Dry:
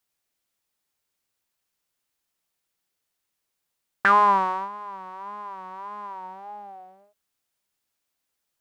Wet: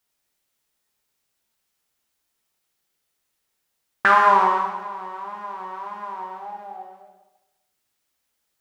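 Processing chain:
dense smooth reverb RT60 1 s, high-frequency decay 0.95×, DRR 0.5 dB
level +2 dB

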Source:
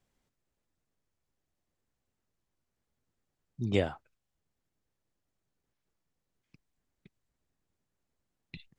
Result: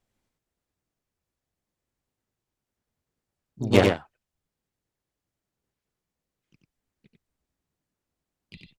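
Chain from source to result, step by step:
harmonic generator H 3 −42 dB, 5 −28 dB, 7 −18 dB, 8 −43 dB, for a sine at −12.5 dBFS
single-tap delay 93 ms −3.5 dB
pitch-shifted copies added +3 semitones −5 dB
level +8.5 dB

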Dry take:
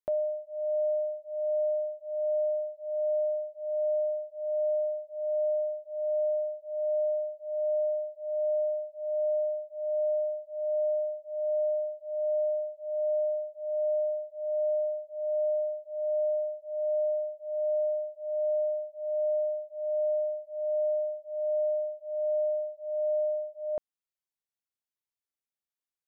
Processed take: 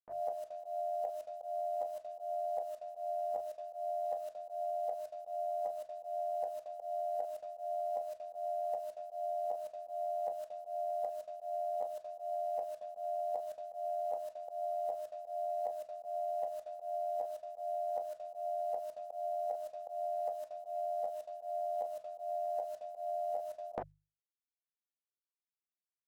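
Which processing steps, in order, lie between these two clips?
ceiling on every frequency bin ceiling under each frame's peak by 18 dB
notch filter 570 Hz, Q 12
low-pass that shuts in the quiet parts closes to 440 Hz, open at −34 dBFS
formants moved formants +2 semitones
downward expander −43 dBFS
output level in coarse steps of 18 dB
mains-hum notches 50/100/150 Hz
on a send at −9 dB: convolution reverb, pre-delay 3 ms
on the sum: volume swells 144 ms
reversed playback
downward compressor 6 to 1, threshold −48 dBFS, peak gain reduction 12.5 dB
reversed playback
level +12.5 dB

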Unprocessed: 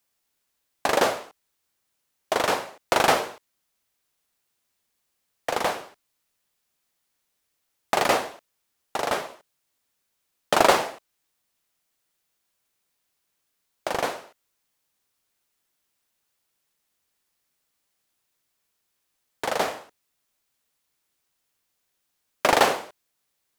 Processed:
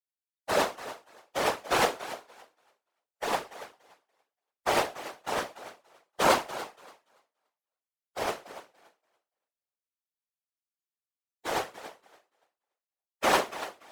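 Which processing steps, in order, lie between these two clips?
noise reduction from a noise print of the clip's start 23 dB
time stretch by phase vocoder 0.59×
feedback echo with a high-pass in the loop 287 ms, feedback 19%, high-pass 230 Hz, level −14 dB
random phases in short frames

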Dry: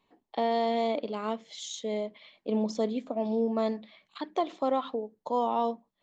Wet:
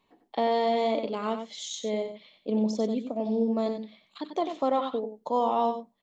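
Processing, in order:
0:02.02–0:04.42: parametric band 1,500 Hz −7 dB 2.1 octaves
single-tap delay 93 ms −8.5 dB
level +2 dB

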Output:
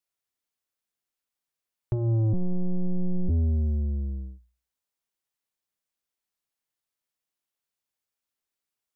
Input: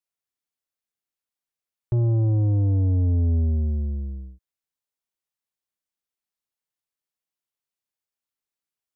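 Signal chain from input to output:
mains-hum notches 60/120/180 Hz
0:02.33–0:03.30: one-pitch LPC vocoder at 8 kHz 180 Hz
in parallel at +2.5 dB: downward compressor, threshold −30 dBFS, peak gain reduction 11.5 dB
on the sum: level −5.5 dB

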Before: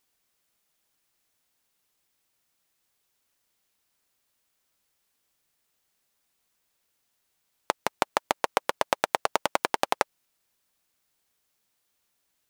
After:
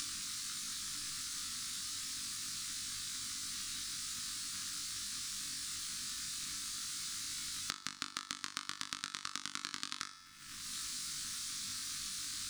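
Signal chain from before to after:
flat-topped bell 6,000 Hz +14.5 dB
upward compression, threshold −28 dBFS
surface crackle 290 per second −40 dBFS
elliptic band-stop filter 290–1,200 Hz, stop band 40 dB
high-shelf EQ 4,300 Hz −9.5 dB
tuned comb filter 88 Hz, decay 0.8 s, harmonics all, mix 50%
on a send: flutter between parallel walls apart 3.5 metres, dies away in 0.28 s
on the sum: downward compressor 8 to 1, threshold −52 dBFS, peak gain reduction 25.5 dB
highs frequency-modulated by the lows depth 0.11 ms
level +15 dB

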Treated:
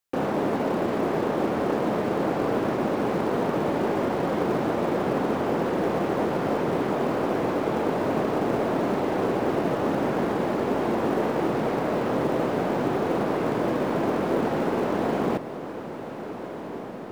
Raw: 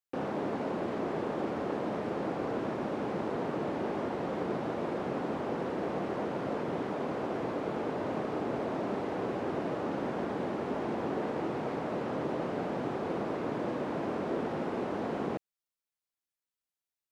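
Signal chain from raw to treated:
stylus tracing distortion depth 0.026 ms
in parallel at −7.5 dB: floating-point word with a short mantissa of 2 bits
on the sum: feedback delay with all-pass diffusion 1,563 ms, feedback 65%, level −12 dB
level +5.5 dB

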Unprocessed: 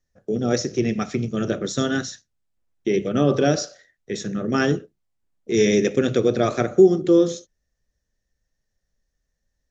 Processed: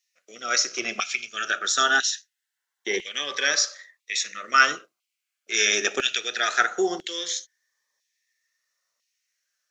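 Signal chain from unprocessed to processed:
auto-filter high-pass saw down 1 Hz 940–2,800 Hz
phaser whose notches keep moving one way rising 0.23 Hz
level +7.5 dB

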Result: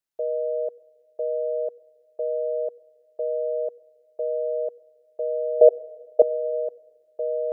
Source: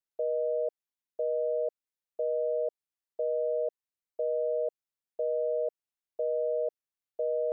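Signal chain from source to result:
0:05.61–0:06.22: flat-topped bell 540 Hz +16 dB 1.1 octaves
on a send: convolution reverb RT60 1.4 s, pre-delay 89 ms, DRR 22.5 dB
on the sum: level +3.5 dB

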